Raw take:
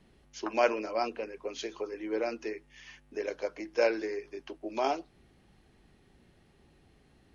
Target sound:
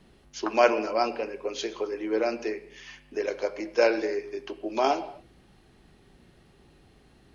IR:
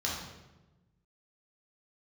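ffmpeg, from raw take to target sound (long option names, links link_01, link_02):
-filter_complex "[0:a]asplit=2[link_01][link_02];[1:a]atrim=start_sample=2205,afade=type=out:start_time=0.24:duration=0.01,atrim=end_sample=11025,asetrate=31311,aresample=44100[link_03];[link_02][link_03]afir=irnorm=-1:irlink=0,volume=-20dB[link_04];[link_01][link_04]amix=inputs=2:normalize=0,volume=5dB"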